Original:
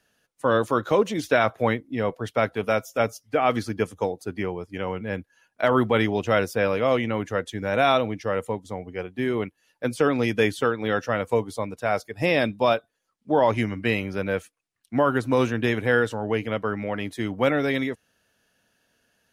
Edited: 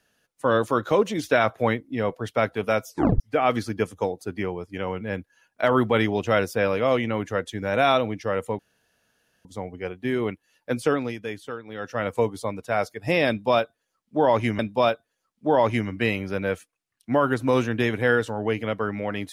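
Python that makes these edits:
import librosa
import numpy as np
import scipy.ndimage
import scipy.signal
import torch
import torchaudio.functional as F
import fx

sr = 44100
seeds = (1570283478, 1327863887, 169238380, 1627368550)

y = fx.edit(x, sr, fx.tape_stop(start_s=2.88, length_s=0.32),
    fx.insert_room_tone(at_s=8.59, length_s=0.86),
    fx.fade_down_up(start_s=9.99, length_s=1.24, db=-11.5, fade_s=0.32),
    fx.repeat(start_s=12.43, length_s=1.3, count=2), tone=tone)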